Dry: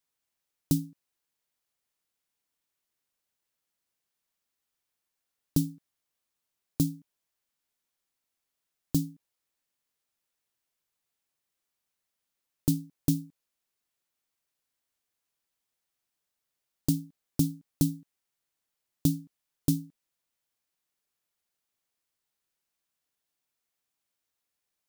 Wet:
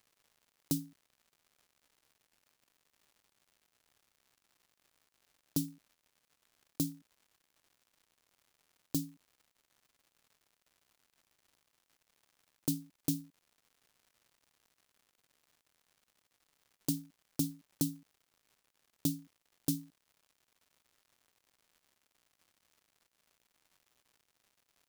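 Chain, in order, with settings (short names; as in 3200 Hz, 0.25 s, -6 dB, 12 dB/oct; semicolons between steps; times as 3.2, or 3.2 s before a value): HPF 370 Hz 6 dB/oct; crackle 210/s -53 dBFS; gain -2.5 dB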